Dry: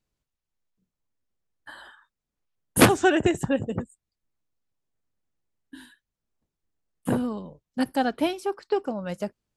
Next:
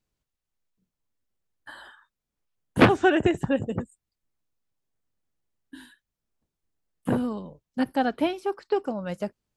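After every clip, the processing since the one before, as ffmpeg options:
-filter_complex "[0:a]acrossover=split=3800[s0][s1];[s1]acompressor=threshold=0.00251:ratio=4:attack=1:release=60[s2];[s0][s2]amix=inputs=2:normalize=0"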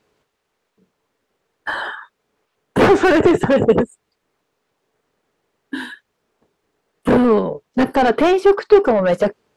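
-filter_complex "[0:a]asplit=2[s0][s1];[s1]highpass=f=720:p=1,volume=50.1,asoftclip=type=tanh:threshold=0.631[s2];[s0][s2]amix=inputs=2:normalize=0,lowpass=f=1200:p=1,volume=0.501,equalizer=f=430:t=o:w=0.32:g=8,volume=0.891"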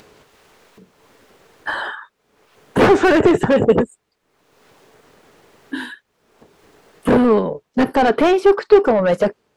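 -af "acompressor=mode=upward:threshold=0.02:ratio=2.5"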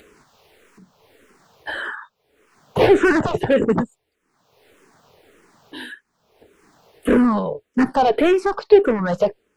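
-filter_complex "[0:a]asplit=2[s0][s1];[s1]afreqshift=-1.7[s2];[s0][s2]amix=inputs=2:normalize=1"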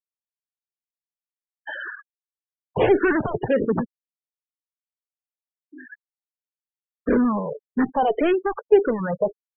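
-af "aresample=8000,aresample=44100,afftfilt=real='re*gte(hypot(re,im),0.0891)':imag='im*gte(hypot(re,im),0.0891)':win_size=1024:overlap=0.75,volume=0.631"

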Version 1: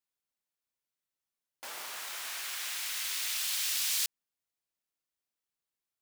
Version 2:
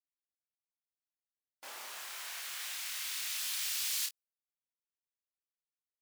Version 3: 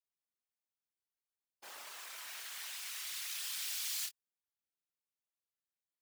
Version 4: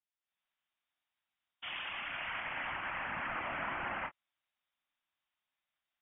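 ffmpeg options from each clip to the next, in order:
-filter_complex "[0:a]afftdn=nr=18:nf=-58,asplit=2[s0][s1];[s1]aecho=0:1:28|49:0.668|0.178[s2];[s0][s2]amix=inputs=2:normalize=0,volume=0.531"
-af "afftfilt=real='hypot(re,im)*cos(2*PI*random(0))':imag='hypot(re,im)*sin(2*PI*random(1))':win_size=512:overlap=0.75,volume=1.26"
-af "dynaudnorm=f=200:g=3:m=3.98,lowpass=f=3200:t=q:w=0.5098,lowpass=f=3200:t=q:w=0.6013,lowpass=f=3200:t=q:w=0.9,lowpass=f=3200:t=q:w=2.563,afreqshift=-3800,equalizer=f=440:t=o:w=0.37:g=-14"

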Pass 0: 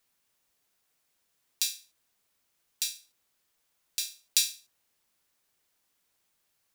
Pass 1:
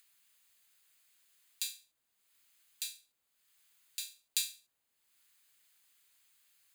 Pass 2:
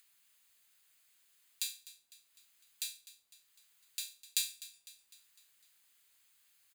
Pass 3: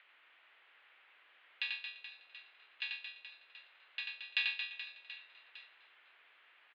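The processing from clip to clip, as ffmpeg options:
-filter_complex "[0:a]bandreject=f=5600:w=5,acrossover=split=560|1400[s0][s1][s2];[s2]acompressor=mode=upward:threshold=0.00316:ratio=2.5[s3];[s0][s1][s3]amix=inputs=3:normalize=0,volume=0.447"
-af "aecho=1:1:252|504|756|1008|1260:0.141|0.0735|0.0382|0.0199|0.0103"
-filter_complex "[0:a]acrossover=split=360 2500:gain=0.251 1 0.224[s0][s1][s2];[s0][s1][s2]amix=inputs=3:normalize=0,aecho=1:1:90|225|427.5|731.2|1187:0.631|0.398|0.251|0.158|0.1,highpass=f=180:t=q:w=0.5412,highpass=f=180:t=q:w=1.307,lowpass=f=3200:t=q:w=0.5176,lowpass=f=3200:t=q:w=0.7071,lowpass=f=3200:t=q:w=1.932,afreqshift=87,volume=6.68"

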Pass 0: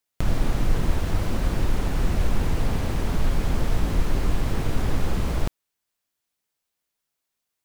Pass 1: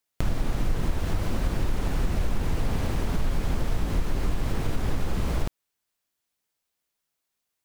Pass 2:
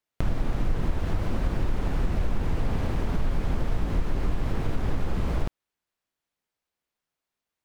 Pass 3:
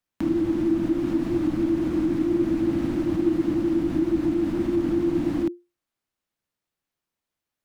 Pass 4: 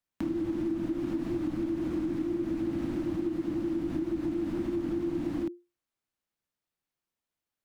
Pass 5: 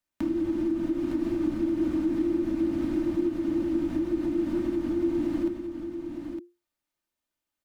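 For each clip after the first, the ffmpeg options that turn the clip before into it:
-af "acompressor=threshold=0.0891:ratio=2.5"
-af "highshelf=f=4400:g=-11"
-af "afreqshift=-350"
-af "acompressor=threshold=0.0708:ratio=6,volume=0.596"
-af "aecho=1:1:3.3:0.43,aecho=1:1:910:0.422,volume=1.12"

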